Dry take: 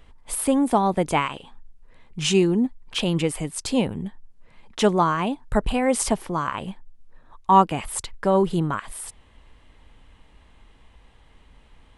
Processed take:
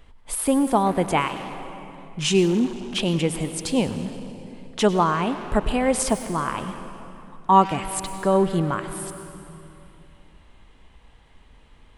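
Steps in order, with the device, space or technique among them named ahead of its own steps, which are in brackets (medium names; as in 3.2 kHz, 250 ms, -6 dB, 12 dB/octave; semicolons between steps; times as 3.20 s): saturated reverb return (on a send at -6.5 dB: reverberation RT60 2.5 s, pre-delay 90 ms + saturation -23 dBFS, distortion -9 dB)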